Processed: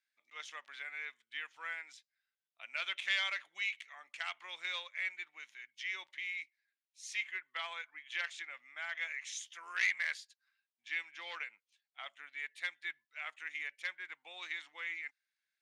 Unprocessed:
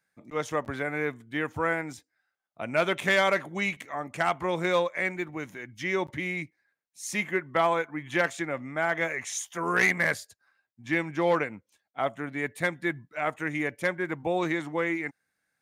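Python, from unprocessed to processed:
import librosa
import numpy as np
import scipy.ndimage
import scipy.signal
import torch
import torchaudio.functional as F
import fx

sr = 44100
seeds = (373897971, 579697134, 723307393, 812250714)

y = fx.ladder_bandpass(x, sr, hz=4000.0, resonance_pct=25)
y = fx.high_shelf(y, sr, hz=4200.0, db=-9.0)
y = F.gain(torch.from_numpy(y), 10.0).numpy()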